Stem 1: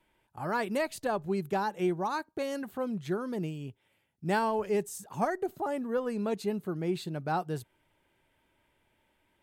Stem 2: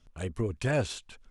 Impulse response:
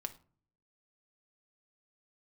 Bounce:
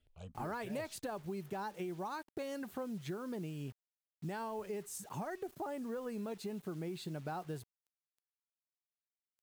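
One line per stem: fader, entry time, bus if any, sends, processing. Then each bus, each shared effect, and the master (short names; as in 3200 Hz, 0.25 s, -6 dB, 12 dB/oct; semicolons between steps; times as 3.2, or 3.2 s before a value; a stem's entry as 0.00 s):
-0.5 dB, 0.00 s, no send, limiter -23.5 dBFS, peak gain reduction 7 dB; compressor 6:1, threshold -38 dBFS, peak gain reduction 10.5 dB; bit-crush 10-bit
-8.0 dB, 0.00 s, no send, endless phaser +1.6 Hz; auto duck -13 dB, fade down 0.70 s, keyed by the first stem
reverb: off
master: dry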